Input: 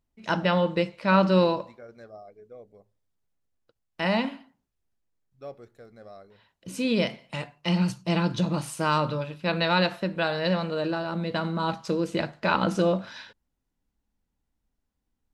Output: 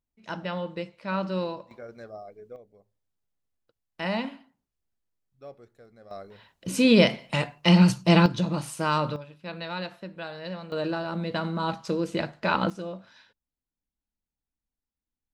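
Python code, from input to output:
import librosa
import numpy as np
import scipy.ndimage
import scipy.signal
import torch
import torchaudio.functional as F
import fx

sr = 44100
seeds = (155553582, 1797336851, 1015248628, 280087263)

y = fx.gain(x, sr, db=fx.steps((0.0, -9.0), (1.71, 3.5), (2.56, -4.0), (6.11, 7.0), (8.26, -1.0), (9.16, -11.0), (10.72, -1.0), (12.7, -13.0)))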